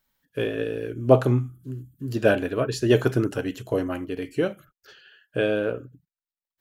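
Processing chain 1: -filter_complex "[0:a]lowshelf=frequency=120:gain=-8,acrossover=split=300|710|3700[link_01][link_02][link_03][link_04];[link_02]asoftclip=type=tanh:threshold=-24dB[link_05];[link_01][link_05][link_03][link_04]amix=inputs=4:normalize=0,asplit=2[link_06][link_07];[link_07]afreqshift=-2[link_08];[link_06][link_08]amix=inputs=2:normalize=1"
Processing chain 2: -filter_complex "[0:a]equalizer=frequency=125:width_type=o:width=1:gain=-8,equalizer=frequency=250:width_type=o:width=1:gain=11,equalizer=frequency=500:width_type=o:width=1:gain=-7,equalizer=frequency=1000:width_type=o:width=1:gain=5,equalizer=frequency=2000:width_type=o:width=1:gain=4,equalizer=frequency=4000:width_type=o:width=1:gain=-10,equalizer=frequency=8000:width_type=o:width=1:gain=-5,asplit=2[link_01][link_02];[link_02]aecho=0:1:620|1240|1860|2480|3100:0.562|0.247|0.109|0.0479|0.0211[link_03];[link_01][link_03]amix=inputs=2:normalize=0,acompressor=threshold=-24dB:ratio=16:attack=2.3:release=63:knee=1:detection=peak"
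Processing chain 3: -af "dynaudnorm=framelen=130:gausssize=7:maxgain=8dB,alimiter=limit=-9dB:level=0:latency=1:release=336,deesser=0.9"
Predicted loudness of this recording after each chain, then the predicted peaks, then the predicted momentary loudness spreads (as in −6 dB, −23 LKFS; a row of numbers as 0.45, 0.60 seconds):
−31.0, −30.0, −24.0 LKFS; −12.0, −16.5, −9.0 dBFS; 13, 3, 12 LU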